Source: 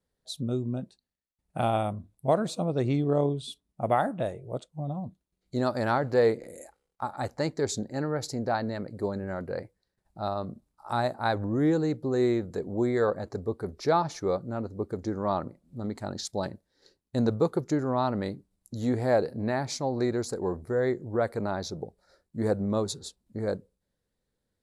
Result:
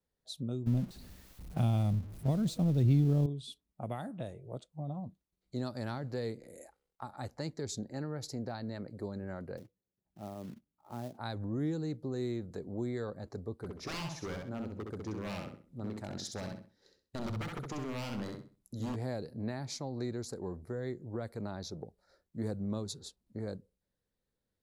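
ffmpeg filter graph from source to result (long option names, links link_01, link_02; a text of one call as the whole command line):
ffmpeg -i in.wav -filter_complex "[0:a]asettb=1/sr,asplit=3[link_01][link_02][link_03];[link_01]atrim=end=0.664[link_04];[link_02]atrim=start=0.66:end=3.26,asetpts=PTS-STARTPTS,afade=type=in:duration=0.004:curve=qsin,afade=type=out:start_time=2.596:duration=0.004:curve=qsin,aeval=exprs='val(0)+0.5*0.0158*sgn(val(0))':channel_layout=same,agate=range=-7dB:threshold=-35dB:ratio=16:release=100:detection=peak,lowshelf=frequency=250:gain=11.5[link_05];[link_03]atrim=start=3.256[link_06];[link_04][link_05]acrossfade=duration=0.004:curve1=hsin:curve2=qsin[link_07];[link_07][link_06]acrossfade=duration=0.004:curve1=qsin:curve2=hsin,asettb=1/sr,asplit=3[link_08][link_09][link_10];[link_08]atrim=end=9.574[link_11];[link_09]atrim=start=9.57:end=11.18,asetpts=PTS-STARTPTS,afade=type=in:duration=0.004:curve=qsin,afade=type=out:start_time=1.606:duration=0.004:curve=qsin,bandpass=frequency=220:width_type=q:width=0.89,acrusher=bits=4:mode=log:mix=0:aa=0.000001[link_12];[link_10]atrim=start=11.176[link_13];[link_11][link_12]acrossfade=duration=0.004:curve1=hsin:curve2=qsin[link_14];[link_14][link_13]acrossfade=duration=0.004:curve1=qsin:curve2=hsin,asettb=1/sr,asplit=3[link_15][link_16][link_17];[link_15]atrim=end=13.584[link_18];[link_16]atrim=start=13.58:end=18.96,asetpts=PTS-STARTPTS,afade=type=in:duration=0.004:curve=qsin,afade=type=out:start_time=5.376:duration=0.004:curve=qsin,bandreject=frequency=4400:width=15,aeval=exprs='0.0531*(abs(mod(val(0)/0.0531+3,4)-2)-1)':channel_layout=same,aecho=1:1:65|130|195|260:0.596|0.161|0.0434|0.0117,atrim=end_sample=237258[link_19];[link_17]atrim=start=18.956[link_20];[link_18][link_19]acrossfade=duration=0.004:curve1=hsin:curve2=qsin[link_21];[link_21][link_20]acrossfade=duration=0.004:curve1=qsin:curve2=hsin,equalizer=frequency=8400:width=1.6:gain=-3,acrossover=split=260|3000[link_22][link_23][link_24];[link_23]acompressor=threshold=-36dB:ratio=4[link_25];[link_22][link_25][link_24]amix=inputs=3:normalize=0,volume=-5.5dB" out.wav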